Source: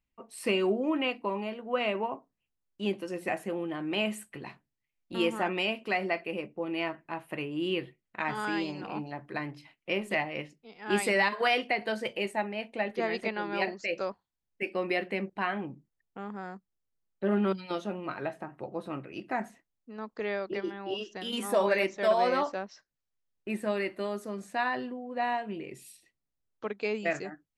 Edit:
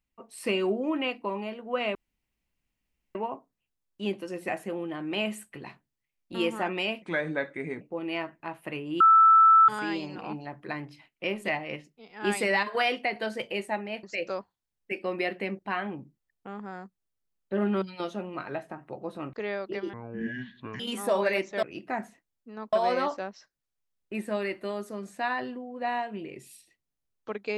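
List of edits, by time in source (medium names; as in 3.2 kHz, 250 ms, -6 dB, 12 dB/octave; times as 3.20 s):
1.95 s: insert room tone 1.20 s
5.82–6.47 s: speed 82%
7.66–8.34 s: bleep 1.32 kHz -13.5 dBFS
12.69–13.74 s: delete
19.04–20.14 s: move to 22.08 s
20.74–21.25 s: speed 59%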